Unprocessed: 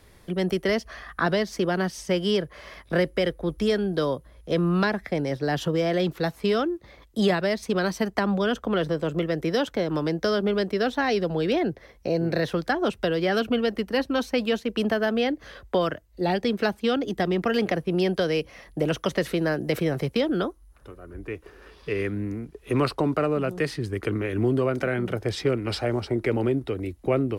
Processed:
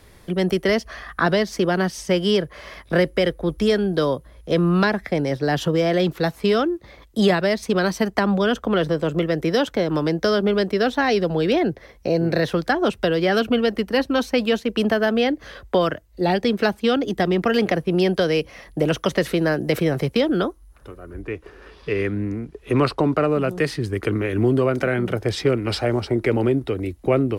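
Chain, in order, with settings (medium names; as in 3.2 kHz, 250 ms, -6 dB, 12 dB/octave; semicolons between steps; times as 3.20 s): 21.22–23.28 s: treble shelf 10 kHz -11.5 dB; trim +4.5 dB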